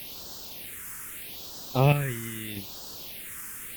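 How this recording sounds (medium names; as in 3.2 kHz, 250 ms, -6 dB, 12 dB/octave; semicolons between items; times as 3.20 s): chopped level 0.78 Hz, depth 60%, duty 50%; a quantiser's noise floor 8-bit, dither triangular; phasing stages 4, 0.79 Hz, lowest notch 640–2200 Hz; Opus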